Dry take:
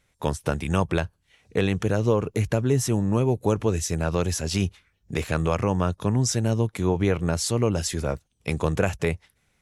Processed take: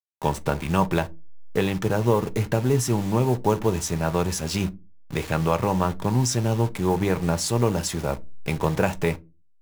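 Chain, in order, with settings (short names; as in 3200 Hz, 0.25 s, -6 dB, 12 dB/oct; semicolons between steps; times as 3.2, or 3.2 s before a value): level-crossing sampler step -33.5 dBFS; dynamic EQ 890 Hz, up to +7 dB, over -44 dBFS, Q 3.1; reverb, pre-delay 5 ms, DRR 8.5 dB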